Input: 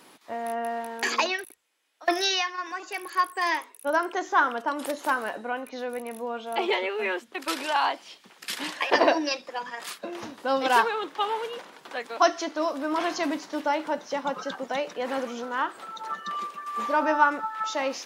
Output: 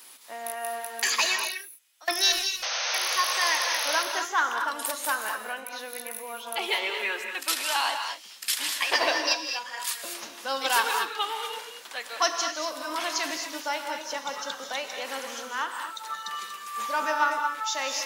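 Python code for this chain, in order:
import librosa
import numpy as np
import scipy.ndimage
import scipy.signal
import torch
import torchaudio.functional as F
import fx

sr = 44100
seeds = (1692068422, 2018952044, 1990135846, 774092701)

p1 = fx.tilt_eq(x, sr, slope=4.5)
p2 = fx.power_curve(p1, sr, exponent=3.0, at=(2.32, 2.94))
p3 = np.clip(10.0 ** (15.0 / 20.0) * p2, -1.0, 1.0) / 10.0 ** (15.0 / 20.0)
p4 = p2 + (p3 * librosa.db_to_amplitude(-8.0))
p5 = fx.spec_paint(p4, sr, seeds[0], shape='noise', start_s=2.62, length_s=1.41, low_hz=470.0, high_hz=6500.0, level_db=-23.0)
p6 = fx.rev_gated(p5, sr, seeds[1], gate_ms=260, shape='rising', drr_db=4.5)
y = p6 * librosa.db_to_amplitude(-7.0)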